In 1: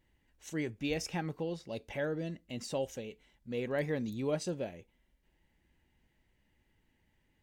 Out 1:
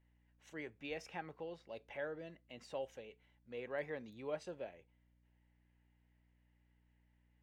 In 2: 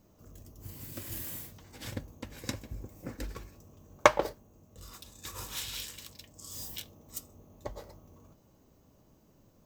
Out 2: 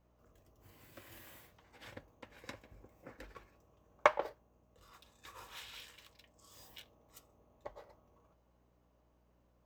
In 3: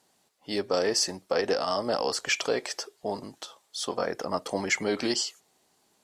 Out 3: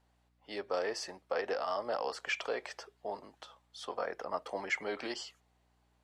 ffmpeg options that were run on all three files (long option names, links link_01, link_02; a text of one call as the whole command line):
ffmpeg -i in.wav -filter_complex "[0:a]acrossover=split=440 3200:gain=0.224 1 0.2[link_01][link_02][link_03];[link_01][link_02][link_03]amix=inputs=3:normalize=0,aeval=exprs='val(0)+0.000447*(sin(2*PI*60*n/s)+sin(2*PI*2*60*n/s)/2+sin(2*PI*3*60*n/s)/3+sin(2*PI*4*60*n/s)/4+sin(2*PI*5*60*n/s)/5)':channel_layout=same,volume=-5dB" out.wav